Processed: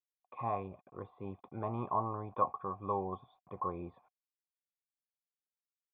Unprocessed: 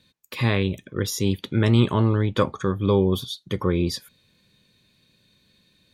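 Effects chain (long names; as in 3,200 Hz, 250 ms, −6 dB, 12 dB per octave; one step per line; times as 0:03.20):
bit-depth reduction 8 bits, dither none
formant resonators in series a
level +5 dB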